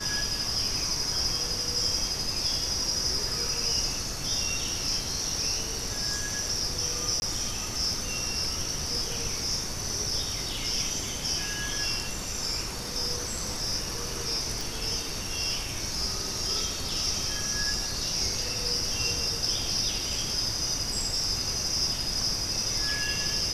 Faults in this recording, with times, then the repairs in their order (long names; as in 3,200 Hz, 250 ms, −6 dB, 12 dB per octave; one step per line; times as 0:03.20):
0:07.20–0:07.22: drop-out 20 ms
0:14.61: click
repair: click removal
repair the gap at 0:07.20, 20 ms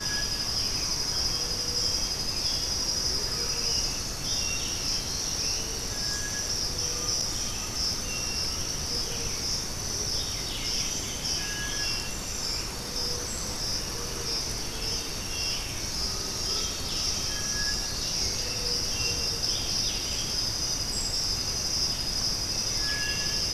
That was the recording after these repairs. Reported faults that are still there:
none of them is left